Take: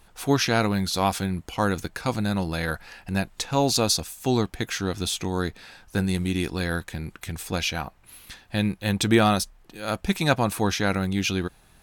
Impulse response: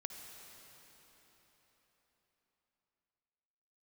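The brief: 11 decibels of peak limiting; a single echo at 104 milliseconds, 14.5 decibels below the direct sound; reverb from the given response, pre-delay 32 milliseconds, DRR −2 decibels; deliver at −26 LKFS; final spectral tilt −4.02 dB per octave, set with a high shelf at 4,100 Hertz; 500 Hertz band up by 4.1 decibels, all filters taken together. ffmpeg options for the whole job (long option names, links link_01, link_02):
-filter_complex "[0:a]equalizer=frequency=500:width_type=o:gain=5,highshelf=frequency=4100:gain=8.5,alimiter=limit=-14.5dB:level=0:latency=1,aecho=1:1:104:0.188,asplit=2[link_01][link_02];[1:a]atrim=start_sample=2205,adelay=32[link_03];[link_02][link_03]afir=irnorm=-1:irlink=0,volume=4dB[link_04];[link_01][link_04]amix=inputs=2:normalize=0,volume=-3.5dB"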